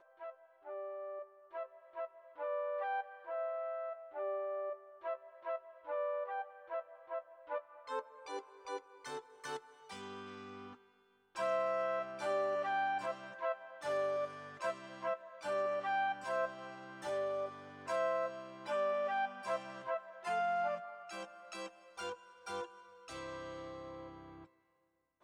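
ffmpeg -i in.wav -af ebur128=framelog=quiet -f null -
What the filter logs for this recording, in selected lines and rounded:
Integrated loudness:
  I:         -40.2 LUFS
  Threshold: -50.5 LUFS
Loudness range:
  LRA:         9.1 LU
  Threshold: -60.2 LUFS
  LRA low:   -46.6 LUFS
  LRA high:  -37.5 LUFS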